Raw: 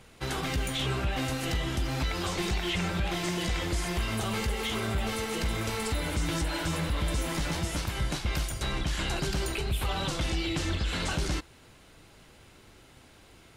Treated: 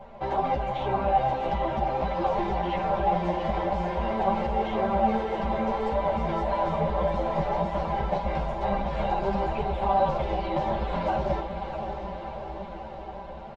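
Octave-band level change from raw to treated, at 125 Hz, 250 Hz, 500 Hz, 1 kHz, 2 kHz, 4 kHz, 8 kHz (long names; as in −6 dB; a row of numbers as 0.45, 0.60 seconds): −2.0 dB, +2.0 dB, +9.5 dB, +12.5 dB, −4.5 dB, −11.0 dB, below −20 dB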